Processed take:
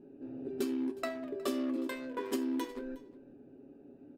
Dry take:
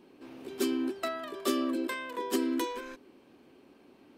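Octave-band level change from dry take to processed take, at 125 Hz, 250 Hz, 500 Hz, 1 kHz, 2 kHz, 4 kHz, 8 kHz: n/a, -2.5 dB, -3.0 dB, -7.0 dB, -6.5 dB, -8.0 dB, -8.0 dB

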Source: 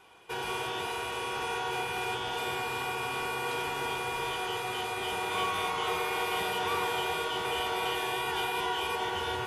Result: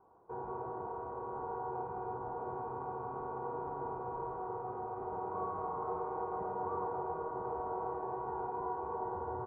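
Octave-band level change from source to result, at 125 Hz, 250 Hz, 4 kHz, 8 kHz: -4.5 dB, -4.5 dB, under -40 dB, under -40 dB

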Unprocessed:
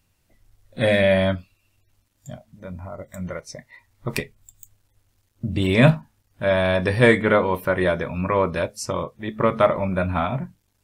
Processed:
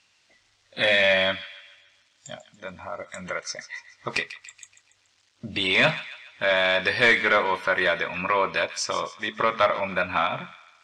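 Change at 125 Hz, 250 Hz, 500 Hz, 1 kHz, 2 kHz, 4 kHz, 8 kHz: -16.0, -11.5, -5.0, +0.5, +3.5, +6.5, +2.0 dB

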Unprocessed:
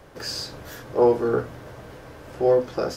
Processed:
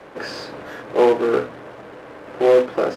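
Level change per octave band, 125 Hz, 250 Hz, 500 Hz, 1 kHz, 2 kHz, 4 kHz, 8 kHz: -5.0 dB, +3.5 dB, +4.5 dB, +4.5 dB, +8.0 dB, -1.5 dB, n/a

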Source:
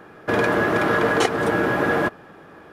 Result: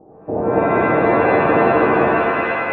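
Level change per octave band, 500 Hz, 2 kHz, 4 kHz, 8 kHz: +6.5 dB, +2.0 dB, n/a, under -35 dB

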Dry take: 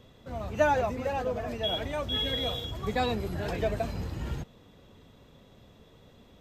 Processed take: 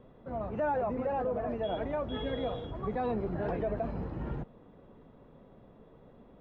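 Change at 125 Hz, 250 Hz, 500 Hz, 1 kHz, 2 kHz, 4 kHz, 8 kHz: -4.0 dB, -0.5 dB, -2.0 dB, -3.5 dB, -9.0 dB, -17.0 dB, under -25 dB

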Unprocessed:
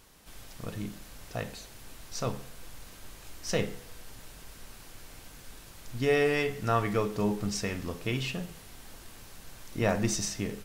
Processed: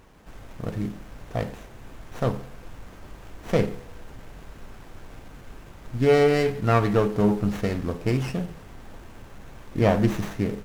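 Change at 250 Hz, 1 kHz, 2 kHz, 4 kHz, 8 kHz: +8.0, +6.0, +2.0, -1.0, -9.0 dB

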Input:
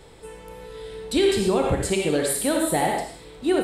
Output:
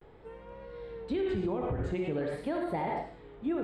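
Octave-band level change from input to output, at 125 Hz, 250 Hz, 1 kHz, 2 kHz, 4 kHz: -6.5, -9.0, -9.5, -13.5, -22.0 dB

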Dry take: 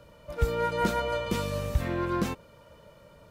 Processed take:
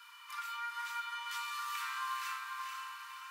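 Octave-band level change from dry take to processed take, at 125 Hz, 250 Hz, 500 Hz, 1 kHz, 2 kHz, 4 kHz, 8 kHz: under -40 dB, under -40 dB, under -40 dB, -5.0 dB, -3.0 dB, -2.5 dB, -3.0 dB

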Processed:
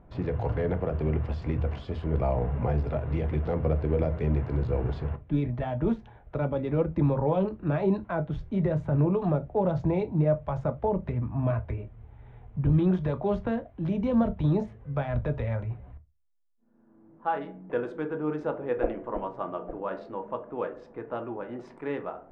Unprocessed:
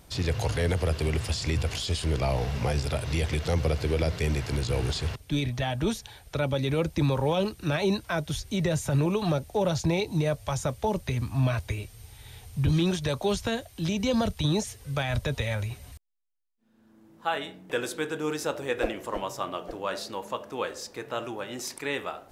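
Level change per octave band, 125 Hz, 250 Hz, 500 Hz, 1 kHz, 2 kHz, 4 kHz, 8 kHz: 0.0 dB, +1.5 dB, +0.5 dB, -1.0 dB, -8.5 dB, under -20 dB, under -30 dB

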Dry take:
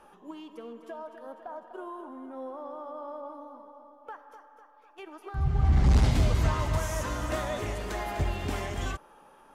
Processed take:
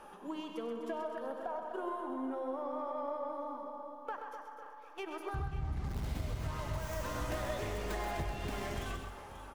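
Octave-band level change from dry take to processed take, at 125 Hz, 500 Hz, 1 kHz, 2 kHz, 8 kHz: -13.0, -2.5, -3.0, -5.5, -8.5 dB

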